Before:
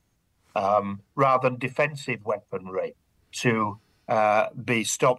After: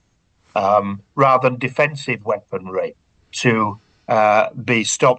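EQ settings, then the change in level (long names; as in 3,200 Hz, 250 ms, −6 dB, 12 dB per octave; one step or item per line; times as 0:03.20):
elliptic low-pass filter 7,600 Hz, stop band 40 dB
+8.0 dB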